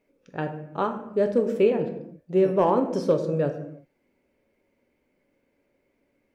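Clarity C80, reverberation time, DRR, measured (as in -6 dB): 12.0 dB, not exponential, 6.0 dB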